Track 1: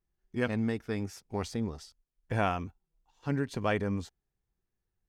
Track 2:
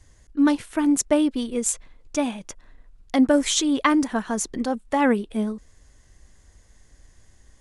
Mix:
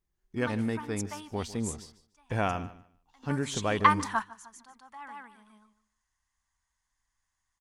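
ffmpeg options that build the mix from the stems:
-filter_complex "[0:a]volume=0dB,asplit=3[a][b][c];[b]volume=-16.5dB[d];[1:a]lowshelf=f=700:t=q:w=3:g=-11.5,volume=-2.5dB,afade=t=in:st=3.64:d=0.33:silence=0.251189,asplit=2[e][f];[f]volume=-22dB[g];[c]apad=whole_len=335228[h];[e][h]sidechaingate=range=-22dB:threshold=-60dB:ratio=16:detection=peak[i];[d][g]amix=inputs=2:normalize=0,aecho=0:1:149|298|447:1|0.2|0.04[j];[a][i][j]amix=inputs=3:normalize=0"

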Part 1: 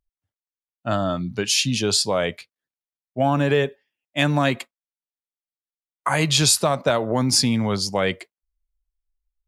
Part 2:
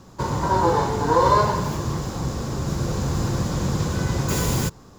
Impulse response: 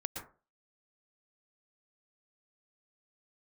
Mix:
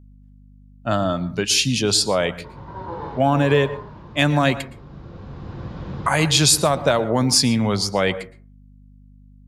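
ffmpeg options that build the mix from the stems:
-filter_complex "[0:a]aeval=exprs='val(0)+0.00447*(sin(2*PI*50*n/s)+sin(2*PI*2*50*n/s)/2+sin(2*PI*3*50*n/s)/3+sin(2*PI*4*50*n/s)/4+sin(2*PI*5*50*n/s)/5)':c=same,volume=0dB,asplit=3[a][b][c];[b]volume=-10.5dB[d];[1:a]lowpass=f=3.6k:w=0.5412,lowpass=f=3.6k:w=1.3066,adelay=2250,volume=-10dB,asplit=2[e][f];[f]volume=-9.5dB[g];[c]apad=whole_len=318973[h];[e][h]sidechaincompress=threshold=-37dB:ratio=8:attack=44:release=876[i];[2:a]atrim=start_sample=2205[j];[d][g]amix=inputs=2:normalize=0[k];[k][j]afir=irnorm=-1:irlink=0[l];[a][i][l]amix=inputs=3:normalize=0"

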